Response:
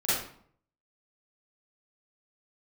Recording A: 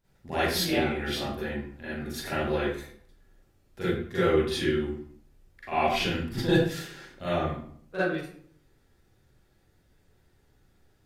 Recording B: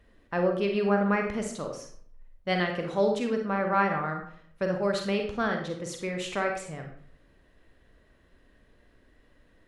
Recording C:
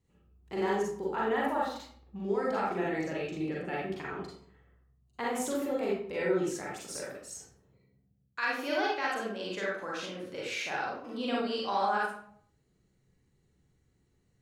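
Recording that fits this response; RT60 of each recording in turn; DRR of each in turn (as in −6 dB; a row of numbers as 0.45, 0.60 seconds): A; 0.60, 0.60, 0.60 seconds; −13.0, 3.0, −5.5 decibels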